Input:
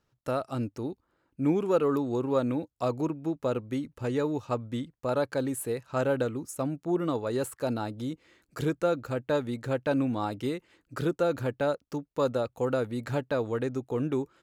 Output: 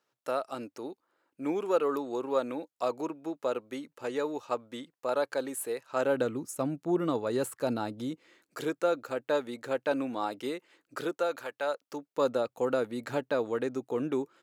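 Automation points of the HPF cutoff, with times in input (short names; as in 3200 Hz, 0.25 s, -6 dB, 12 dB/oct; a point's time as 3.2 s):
5.9 s 410 Hz
6.31 s 150 Hz
7.93 s 150 Hz
8.61 s 350 Hz
10.96 s 350 Hz
11.51 s 820 Hz
12.27 s 240 Hz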